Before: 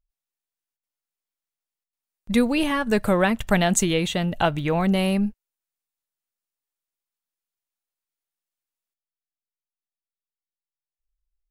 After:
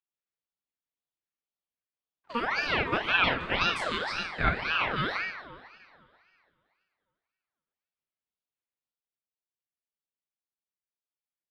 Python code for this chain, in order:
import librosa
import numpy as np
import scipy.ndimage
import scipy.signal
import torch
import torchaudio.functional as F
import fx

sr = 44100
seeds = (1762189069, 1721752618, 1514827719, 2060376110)

p1 = fx.spec_steps(x, sr, hold_ms=50)
p2 = fx.bandpass_edges(p1, sr, low_hz=450.0, high_hz=2300.0)
p3 = p2 + fx.echo_feedback(p2, sr, ms=145, feedback_pct=39, wet_db=-14.0, dry=0)
p4 = fx.rev_double_slope(p3, sr, seeds[0], early_s=0.39, late_s=2.6, knee_db=-18, drr_db=0.0)
y = fx.ring_lfo(p4, sr, carrier_hz=1400.0, swing_pct=50, hz=1.9)